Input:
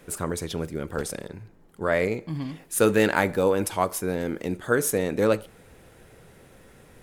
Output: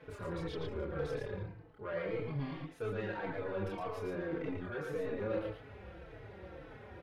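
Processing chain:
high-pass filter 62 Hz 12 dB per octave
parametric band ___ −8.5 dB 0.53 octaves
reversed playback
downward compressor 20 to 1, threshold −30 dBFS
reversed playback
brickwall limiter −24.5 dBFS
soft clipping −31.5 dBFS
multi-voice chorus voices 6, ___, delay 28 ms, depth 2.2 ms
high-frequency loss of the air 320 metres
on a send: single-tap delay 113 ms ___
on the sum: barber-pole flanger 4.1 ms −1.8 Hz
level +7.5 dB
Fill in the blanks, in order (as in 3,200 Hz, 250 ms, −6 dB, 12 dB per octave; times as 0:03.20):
240 Hz, 0.62 Hz, −4 dB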